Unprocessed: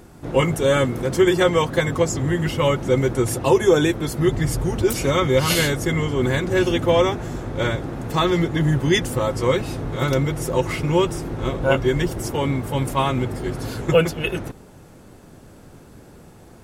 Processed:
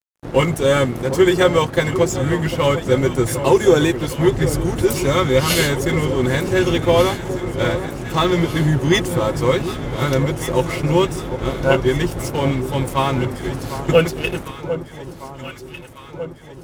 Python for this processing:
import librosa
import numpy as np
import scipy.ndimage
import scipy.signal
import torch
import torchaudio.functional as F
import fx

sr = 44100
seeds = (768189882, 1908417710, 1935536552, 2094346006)

y = np.sign(x) * np.maximum(np.abs(x) - 10.0 ** (-35.5 / 20.0), 0.0)
y = fx.echo_alternate(y, sr, ms=750, hz=1100.0, feedback_pct=73, wet_db=-10)
y = y * librosa.db_to_amplitude(3.0)